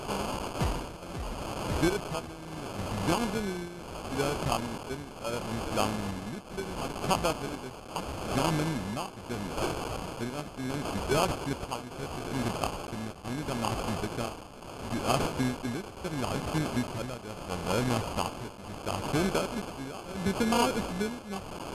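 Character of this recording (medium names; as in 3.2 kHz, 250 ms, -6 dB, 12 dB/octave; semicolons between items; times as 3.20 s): a quantiser's noise floor 6-bit, dither triangular; tremolo triangle 0.74 Hz, depth 80%; aliases and images of a low sample rate 1.9 kHz, jitter 0%; MP2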